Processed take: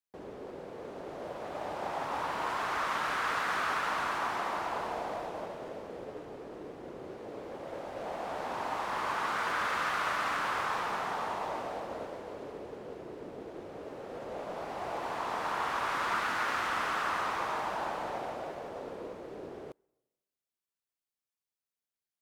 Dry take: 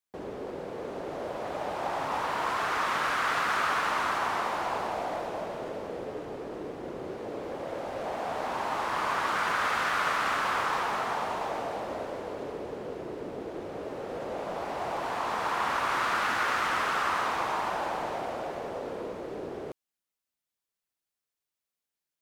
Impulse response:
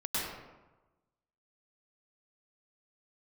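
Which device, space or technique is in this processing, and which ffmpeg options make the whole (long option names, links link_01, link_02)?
keyed gated reverb: -filter_complex "[0:a]asplit=3[link_01][link_02][link_03];[1:a]atrim=start_sample=2205[link_04];[link_02][link_04]afir=irnorm=-1:irlink=0[link_05];[link_03]apad=whole_len=979580[link_06];[link_05][link_06]sidechaingate=range=-28dB:threshold=-34dB:ratio=16:detection=peak,volume=-10.5dB[link_07];[link_01][link_07]amix=inputs=2:normalize=0,volume=-6.5dB"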